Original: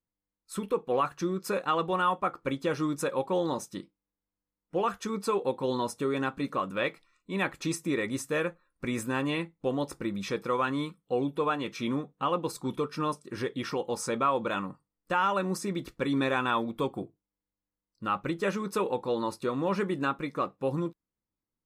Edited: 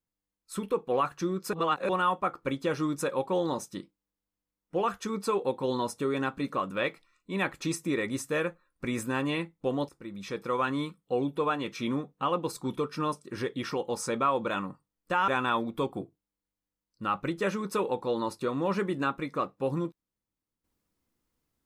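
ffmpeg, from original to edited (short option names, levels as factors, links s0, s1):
-filter_complex "[0:a]asplit=5[s0][s1][s2][s3][s4];[s0]atrim=end=1.532[s5];[s1]atrim=start=1.528:end=1.892,asetpts=PTS-STARTPTS,areverse[s6];[s2]atrim=start=1.888:end=9.89,asetpts=PTS-STARTPTS,afade=t=out:st=7.998:d=0.004:c=hsin:silence=0.141254[s7];[s3]atrim=start=9.89:end=15.282,asetpts=PTS-STARTPTS,afade=t=in:d=0.73:silence=0.141254[s8];[s4]atrim=start=16.288[s9];[s5][s6]acrossfade=d=0.004:c1=hsin:c2=hsin[s10];[s7][s8]concat=n=2:v=0:a=1[s11];[s10][s11]acrossfade=d=0.004:c1=hsin:c2=hsin[s12];[s12][s9]acrossfade=d=0.004:c1=hsin:c2=hsin"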